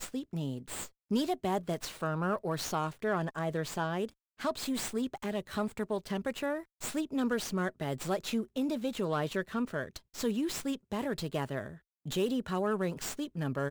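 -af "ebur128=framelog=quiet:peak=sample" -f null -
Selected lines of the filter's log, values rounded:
Integrated loudness:
  I:         -34.4 LUFS
  Threshold: -44.5 LUFS
Loudness range:
  LRA:         1.5 LU
  Threshold: -54.4 LUFS
  LRA low:   -35.2 LUFS
  LRA high:  -33.7 LUFS
Sample peak:
  Peak:      -19.8 dBFS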